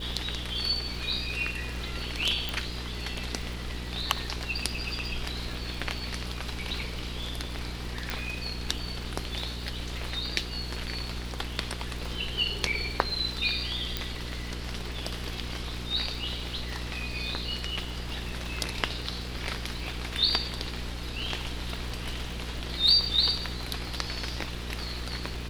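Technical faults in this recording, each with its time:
surface crackle 170 per second −38 dBFS
mains hum 60 Hz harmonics 8 −37 dBFS
0:02.49: click
0:08.10: click
0:13.97: click −13 dBFS

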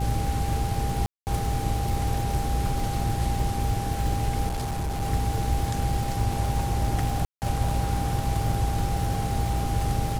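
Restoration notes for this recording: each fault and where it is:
surface crackle 230 per second −31 dBFS
mains hum 60 Hz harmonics 6 −30 dBFS
whistle 800 Hz −32 dBFS
0:01.06–0:01.27: drop-out 209 ms
0:04.47–0:05.03: clipping −25 dBFS
0:07.25–0:07.42: drop-out 169 ms

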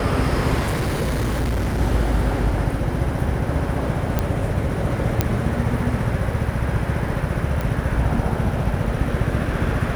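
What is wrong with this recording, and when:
0:00.59–0:01.81: clipping −18.5 dBFS
0:04.19: click −7 dBFS
0:05.21: click −3 dBFS
0:07.61: click

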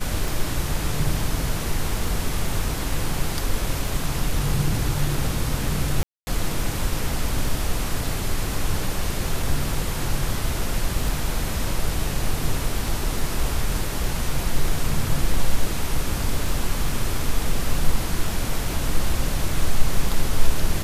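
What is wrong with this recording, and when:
scratch tick 33 1/3 rpm
0:06.03–0:06.27: drop-out 240 ms

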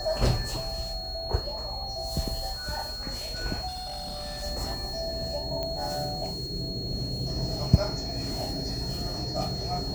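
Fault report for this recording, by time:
whistle 4,300 Hz −35 dBFS
0:03.67–0:04.44: clipping −32.5 dBFS
0:05.63: click −18 dBFS

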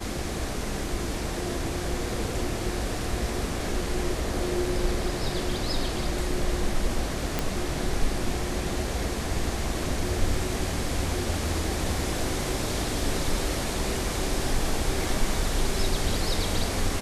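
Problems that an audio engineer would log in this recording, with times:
0:07.39: click

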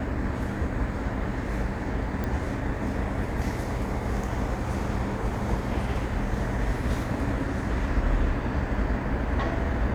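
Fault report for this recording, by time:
0:02.24: click −18 dBFS

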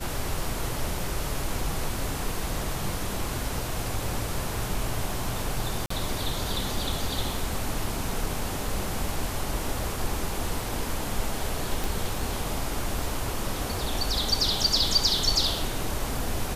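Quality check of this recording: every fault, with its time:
0:05.86–0:05.90: drop-out 44 ms
0:11.84: click

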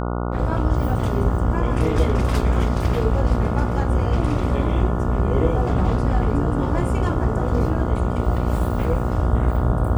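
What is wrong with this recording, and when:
mains buzz 60 Hz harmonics 24 −24 dBFS

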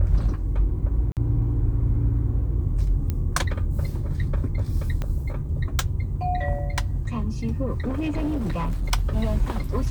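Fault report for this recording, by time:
0:01.12–0:01.17: drop-out 48 ms
0:03.10: click −14 dBFS
0:05.02: click −16 dBFS
0:07.87–0:08.93: clipping −21.5 dBFS

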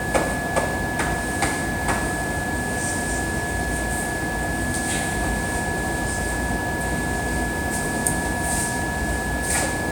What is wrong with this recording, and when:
whistle 1,700 Hz −28 dBFS

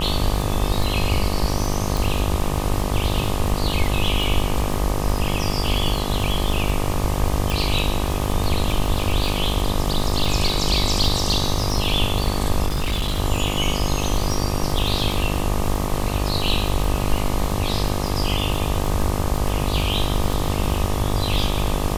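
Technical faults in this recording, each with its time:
mains buzz 50 Hz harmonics 25 −25 dBFS
surface crackle 39 per second −23 dBFS
0:01.97: click
0:07.50: click
0:12.66–0:13.20: clipping −18 dBFS

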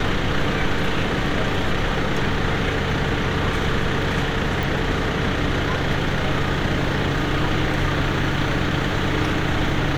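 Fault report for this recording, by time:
0:04.63: click

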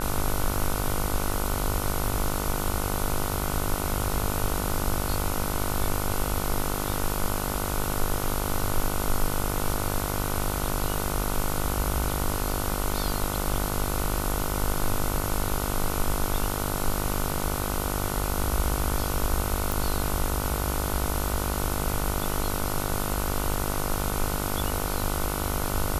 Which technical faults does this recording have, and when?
mains buzz 50 Hz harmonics 30 −31 dBFS
0:19.72: click

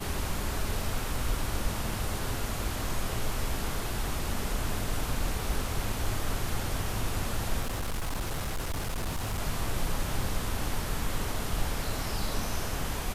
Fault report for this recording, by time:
0:07.61–0:09.40: clipping −27.5 dBFS

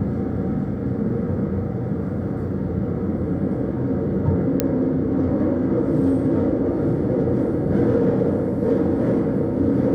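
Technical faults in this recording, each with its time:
0:04.60: click −4 dBFS

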